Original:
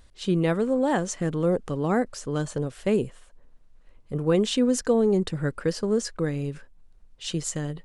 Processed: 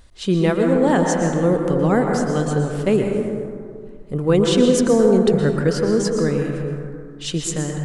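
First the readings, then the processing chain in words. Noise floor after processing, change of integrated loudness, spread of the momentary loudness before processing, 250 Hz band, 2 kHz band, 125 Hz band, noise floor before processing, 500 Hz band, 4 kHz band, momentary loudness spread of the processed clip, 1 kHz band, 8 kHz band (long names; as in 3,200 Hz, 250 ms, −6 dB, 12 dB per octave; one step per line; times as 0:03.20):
−37 dBFS, +7.0 dB, 10 LU, +7.5 dB, +7.5 dB, +7.5 dB, −54 dBFS, +7.5 dB, +6.0 dB, 13 LU, +7.5 dB, +6.0 dB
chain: dense smooth reverb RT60 2.3 s, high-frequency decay 0.3×, pre-delay 105 ms, DRR 2 dB
level +5 dB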